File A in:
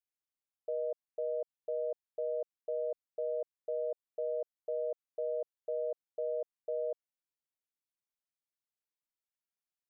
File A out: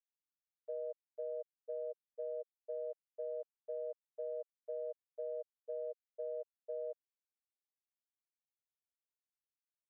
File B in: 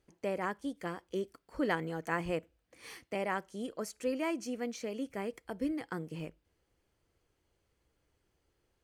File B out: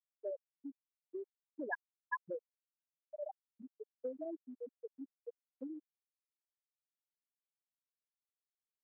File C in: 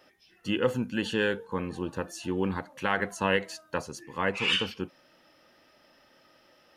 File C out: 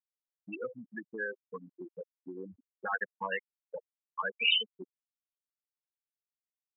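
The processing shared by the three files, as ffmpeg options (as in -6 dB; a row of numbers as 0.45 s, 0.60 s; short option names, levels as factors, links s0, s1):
-af "afftfilt=real='re*gte(hypot(re,im),0.158)':imag='im*gte(hypot(re,im),0.158)':win_size=1024:overlap=0.75,acompressor=threshold=0.0158:ratio=3,bandpass=f=3200:t=q:w=0.65:csg=0,volume=3.35"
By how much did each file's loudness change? -6.5 LU, -9.5 LU, -3.5 LU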